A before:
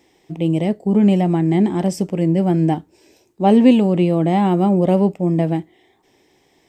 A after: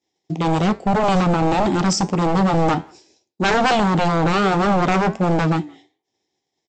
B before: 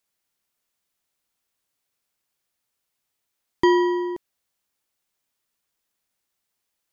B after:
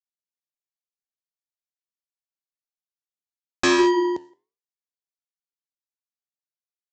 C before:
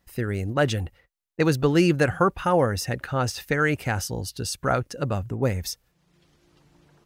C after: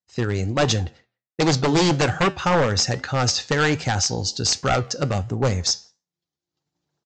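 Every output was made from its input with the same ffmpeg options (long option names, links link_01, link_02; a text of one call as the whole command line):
ffmpeg -i in.wav -filter_complex "[0:a]highpass=frequency=72:width=0.5412,highpass=frequency=72:width=1.3066,agate=range=-33dB:threshold=-42dB:ratio=3:detection=peak,aexciter=amount=3.7:drive=2.5:freq=3700,aresample=16000,aeval=exprs='0.15*(abs(mod(val(0)/0.15+3,4)-2)-1)':channel_layout=same,aresample=44100,flanger=delay=9:depth=3.8:regen=-81:speed=1.3:shape=triangular,equalizer=frequency=780:width_type=o:width=0.21:gain=5,asplit=2[link_01][link_02];[link_02]adelay=170,highpass=300,lowpass=3400,asoftclip=type=hard:threshold=-25dB,volume=-28dB[link_03];[link_01][link_03]amix=inputs=2:normalize=0,volume=8.5dB" out.wav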